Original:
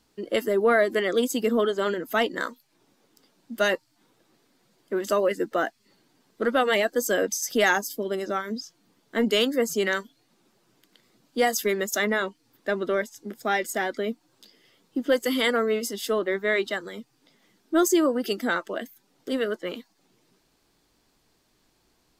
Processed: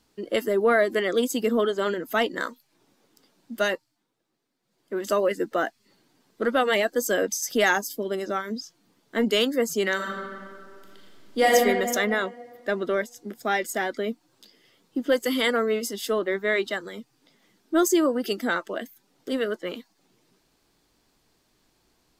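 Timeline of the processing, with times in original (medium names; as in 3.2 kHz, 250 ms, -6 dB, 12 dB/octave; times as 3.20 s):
3.56–5.10 s: dip -14 dB, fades 0.48 s
9.95–11.52 s: reverb throw, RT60 2.1 s, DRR -4.5 dB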